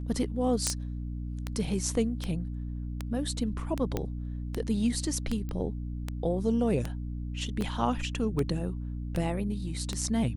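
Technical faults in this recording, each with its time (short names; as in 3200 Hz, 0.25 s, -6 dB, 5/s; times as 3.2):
hum 60 Hz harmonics 5 -35 dBFS
tick 78 rpm -17 dBFS
0.67 pop -12 dBFS
3.97 pop -16 dBFS
5.49 pop -25 dBFS
7.61 gap 3.2 ms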